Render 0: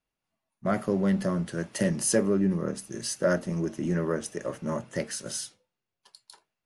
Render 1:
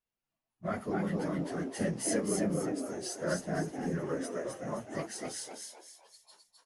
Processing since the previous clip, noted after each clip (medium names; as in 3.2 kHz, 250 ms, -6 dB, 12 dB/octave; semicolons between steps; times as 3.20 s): phase randomisation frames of 50 ms; on a send: frequency-shifting echo 259 ms, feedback 39%, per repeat +100 Hz, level -3.5 dB; on the sum: trim -7.5 dB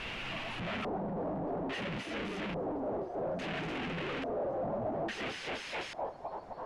one-bit comparator; LFO low-pass square 0.59 Hz 730–2700 Hz; trim -2 dB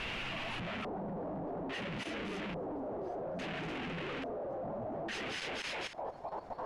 level held to a coarse grid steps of 11 dB; trim +4.5 dB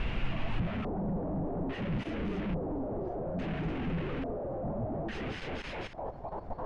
RIAA curve playback